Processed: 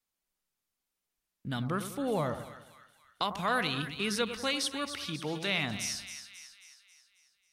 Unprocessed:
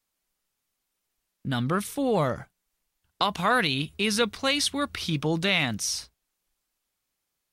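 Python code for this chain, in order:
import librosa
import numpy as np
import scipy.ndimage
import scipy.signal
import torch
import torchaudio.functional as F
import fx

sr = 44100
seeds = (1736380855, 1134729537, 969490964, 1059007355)

y = fx.highpass(x, sr, hz=fx.line((4.53, 150.0), (5.47, 330.0)), slope=6, at=(4.53, 5.47), fade=0.02)
y = fx.echo_split(y, sr, split_hz=1300.0, low_ms=98, high_ms=270, feedback_pct=52, wet_db=-10.0)
y = F.gain(torch.from_numpy(y), -7.0).numpy()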